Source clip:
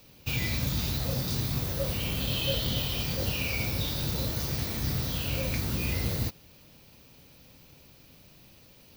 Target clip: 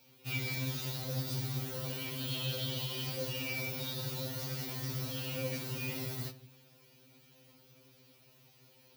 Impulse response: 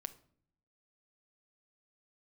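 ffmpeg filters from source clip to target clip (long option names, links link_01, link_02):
-filter_complex "[0:a]highpass=120,bandreject=frequency=287.1:width_type=h:width=4,bandreject=frequency=574.2:width_type=h:width=4,bandreject=frequency=861.3:width_type=h:width=4,bandreject=frequency=1148.4:width_type=h:width=4,bandreject=frequency=1435.5:width_type=h:width=4,bandreject=frequency=1722.6:width_type=h:width=4,bandreject=frequency=2009.7:width_type=h:width=4,bandreject=frequency=2296.8:width_type=h:width=4,bandreject=frequency=2583.9:width_type=h:width=4,bandreject=frequency=2871:width_type=h:width=4,bandreject=frequency=3158.1:width_type=h:width=4,bandreject=frequency=3445.2:width_type=h:width=4,bandreject=frequency=3732.3:width_type=h:width=4,bandreject=frequency=4019.4:width_type=h:width=4,bandreject=frequency=4306.5:width_type=h:width=4,bandreject=frequency=4593.6:width_type=h:width=4[link_01];[1:a]atrim=start_sample=2205,asetrate=48510,aresample=44100[link_02];[link_01][link_02]afir=irnorm=-1:irlink=0,afftfilt=real='re*2.45*eq(mod(b,6),0)':imag='im*2.45*eq(mod(b,6),0)':win_size=2048:overlap=0.75"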